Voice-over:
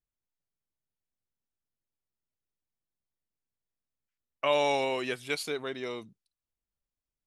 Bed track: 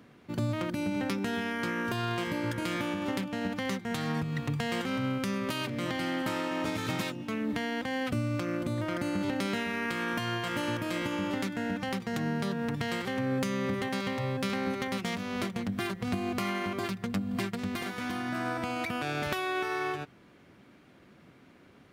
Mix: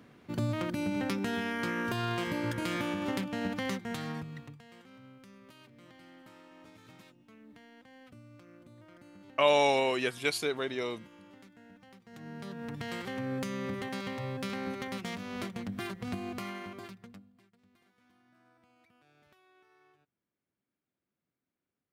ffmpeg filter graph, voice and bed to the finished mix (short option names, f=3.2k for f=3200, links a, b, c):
-filter_complex "[0:a]adelay=4950,volume=2dB[a];[1:a]volume=17dB,afade=t=out:st=3.63:d=0.96:silence=0.0794328,afade=t=in:st=12.03:d=0.96:silence=0.125893,afade=t=out:st=16.1:d=1.23:silence=0.0375837[b];[a][b]amix=inputs=2:normalize=0"